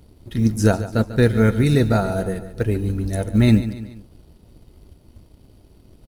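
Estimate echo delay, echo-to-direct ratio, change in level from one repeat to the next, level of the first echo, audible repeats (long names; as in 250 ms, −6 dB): 144 ms, −13.0 dB, −6.0 dB, −14.0 dB, 3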